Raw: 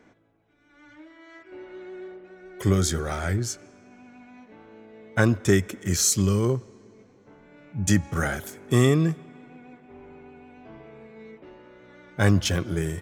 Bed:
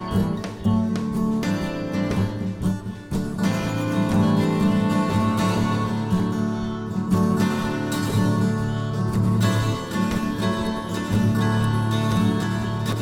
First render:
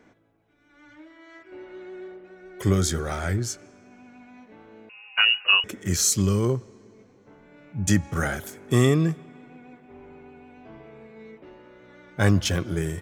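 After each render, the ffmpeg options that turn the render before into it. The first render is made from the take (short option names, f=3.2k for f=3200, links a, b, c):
-filter_complex "[0:a]asettb=1/sr,asplit=3[a][b][c];[a]atrim=end=4.894[d];[b]atrim=start=4.89:end=5.64,asetpts=PTS-STARTPTS,afade=t=in:d=0.004:c=qsin,afade=t=out:st=0.746:d=0.004:c=qsin,lowpass=f=2.6k:t=q:w=0.5098,lowpass=f=2.6k:t=q:w=0.6013,lowpass=f=2.6k:t=q:w=0.9,lowpass=f=2.6k:t=q:w=2.563,afreqshift=-3000[e];[c]atrim=start=5.636[f];[d][e]acrossfade=d=0.004:c1=hsin:c2=qsin[g];[g][f]acrossfade=d=0.004:c1=qsin:c2=hsin"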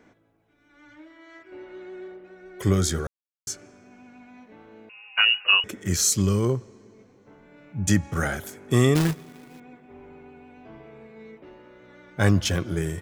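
-filter_complex "[0:a]asettb=1/sr,asplit=3[a][b][c];[a]atrim=end=8.954[d];[b]atrim=start=8.95:end=9.6,asetpts=PTS-STARTPTS,afade=t=in:d=0.004:c=qsin,afade=t=out:st=0.646:d=0.004:c=qsin,acrusher=bits=2:mode=log:mix=0:aa=0.000001[e];[c]atrim=start=9.596[f];[d][e]acrossfade=d=0.004:c1=hsin:c2=qsin[g];[g][f]acrossfade=d=0.004:c1=qsin:c2=hsin,asplit=3[h][i][j];[h]atrim=end=3.07,asetpts=PTS-STARTPTS,afade=t=out:st=3.066:d=0.004:c=hsin[k];[i]atrim=start=3.07:end=3.47,asetpts=PTS-STARTPTS,volume=0[l];[j]atrim=start=3.47,asetpts=PTS-STARTPTS,afade=t=in:d=0.004:c=hsin[m];[k][l][m]concat=n=3:v=0:a=1"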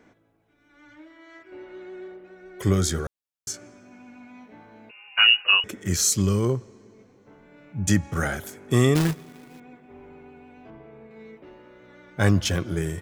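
-filter_complex "[0:a]asettb=1/sr,asplit=3[a][b][c];[a]atrim=end=3.524[d];[b]atrim=start=3.52:end=5.42,asetpts=PTS-STARTPTS,afade=t=in:d=0.004:c=qsin,afade=t=out:st=1.896:d=0.004:c=qsin,asplit=2[e][f];[f]adelay=17,volume=-3.5dB[g];[e][g]amix=inputs=2:normalize=0,atrim=end_sample=83790[h];[c]atrim=start=5.416[i];[d][h]acrossfade=d=0.004:c1=hsin:c2=qsin[j];[j][i]acrossfade=d=0.004:c1=qsin:c2=hsin,asettb=1/sr,asplit=3[k][l][m];[k]atrim=end=10.704[n];[l]atrim=start=10.7:end=11.11,asetpts=PTS-STARTPTS,afade=t=in:d=0.004:c=qsin,afade=t=out:st=0.406:d=0.004:c=qsin,highshelf=f=2.7k:g=-10.5[o];[m]atrim=start=11.106[p];[n][o]acrossfade=d=0.004:c1=hsin:c2=qsin[q];[q][p]acrossfade=d=0.004:c1=qsin:c2=hsin"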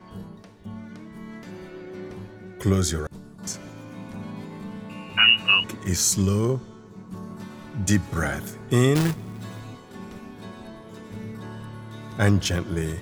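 -filter_complex "[1:a]volume=-17.5dB[a];[0:a][a]amix=inputs=2:normalize=0"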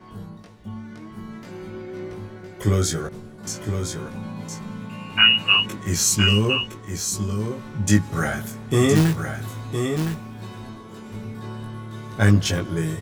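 -filter_complex "[0:a]asplit=2[a][b];[b]adelay=19,volume=-3dB[c];[a][c]amix=inputs=2:normalize=0,asplit=2[d][e];[e]aecho=0:1:1013:0.473[f];[d][f]amix=inputs=2:normalize=0"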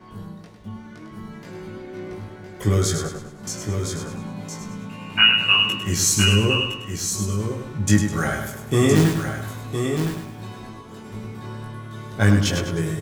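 -af "aecho=1:1:102|204|306|408|510:0.447|0.183|0.0751|0.0308|0.0126"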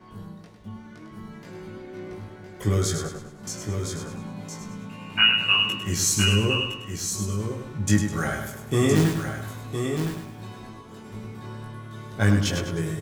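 -af "volume=-3.5dB"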